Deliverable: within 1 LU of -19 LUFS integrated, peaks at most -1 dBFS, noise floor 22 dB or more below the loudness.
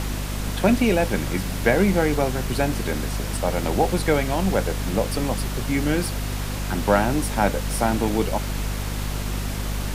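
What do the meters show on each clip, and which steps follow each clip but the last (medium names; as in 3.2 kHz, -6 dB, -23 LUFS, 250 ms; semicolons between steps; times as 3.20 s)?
hum 50 Hz; highest harmonic 250 Hz; hum level -25 dBFS; noise floor -28 dBFS; noise floor target -46 dBFS; loudness -23.5 LUFS; peak level -4.0 dBFS; loudness target -19.0 LUFS
-> de-hum 50 Hz, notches 5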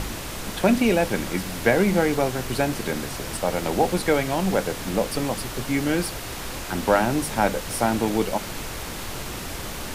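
hum not found; noise floor -33 dBFS; noise floor target -47 dBFS
-> noise print and reduce 14 dB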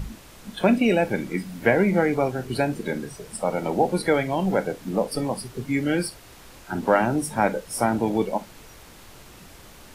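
noise floor -47 dBFS; loudness -24.0 LUFS; peak level -4.5 dBFS; loudness target -19.0 LUFS
-> trim +5 dB; peak limiter -1 dBFS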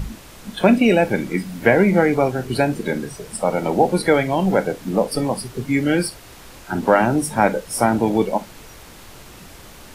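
loudness -19.0 LUFS; peak level -1.0 dBFS; noise floor -42 dBFS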